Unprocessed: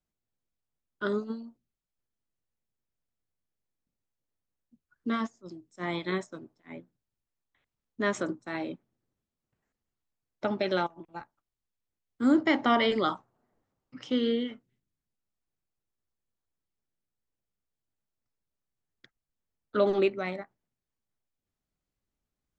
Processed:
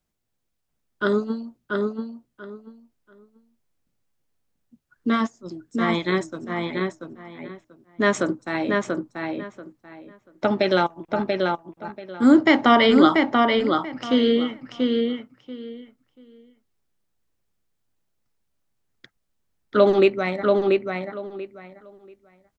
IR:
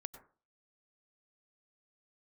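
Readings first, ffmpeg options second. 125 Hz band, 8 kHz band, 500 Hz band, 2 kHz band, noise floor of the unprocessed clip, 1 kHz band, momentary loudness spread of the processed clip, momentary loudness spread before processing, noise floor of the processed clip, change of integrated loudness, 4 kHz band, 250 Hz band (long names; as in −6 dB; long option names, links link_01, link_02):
+10.5 dB, can't be measured, +10.5 dB, +10.0 dB, below −85 dBFS, +10.0 dB, 22 LU, 22 LU, −75 dBFS, +8.0 dB, +9.5 dB, +10.5 dB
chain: -filter_complex "[0:a]asplit=2[link_01][link_02];[link_02]adelay=686,lowpass=frequency=3900:poles=1,volume=-3dB,asplit=2[link_03][link_04];[link_04]adelay=686,lowpass=frequency=3900:poles=1,volume=0.2,asplit=2[link_05][link_06];[link_06]adelay=686,lowpass=frequency=3900:poles=1,volume=0.2[link_07];[link_01][link_03][link_05][link_07]amix=inputs=4:normalize=0,volume=8.5dB"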